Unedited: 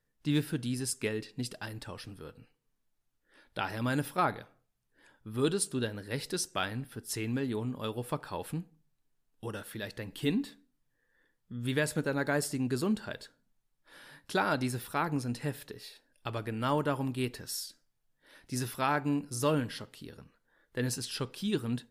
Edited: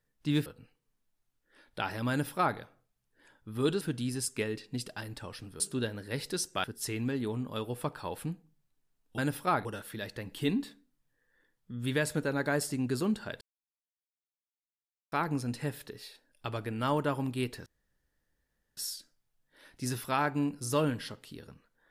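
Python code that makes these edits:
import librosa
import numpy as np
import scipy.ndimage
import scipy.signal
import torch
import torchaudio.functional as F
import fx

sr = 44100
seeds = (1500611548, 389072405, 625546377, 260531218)

y = fx.edit(x, sr, fx.move(start_s=0.46, length_s=1.79, to_s=5.6),
    fx.duplicate(start_s=3.89, length_s=0.47, to_s=9.46),
    fx.cut(start_s=6.64, length_s=0.28),
    fx.silence(start_s=13.22, length_s=1.71),
    fx.insert_room_tone(at_s=17.47, length_s=1.11), tone=tone)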